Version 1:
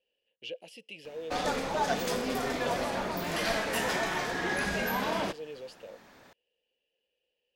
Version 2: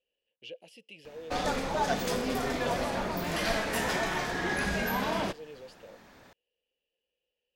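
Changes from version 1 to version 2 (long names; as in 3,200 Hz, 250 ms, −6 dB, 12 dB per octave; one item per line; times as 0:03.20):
speech −4.5 dB
master: add low-shelf EQ 130 Hz +7 dB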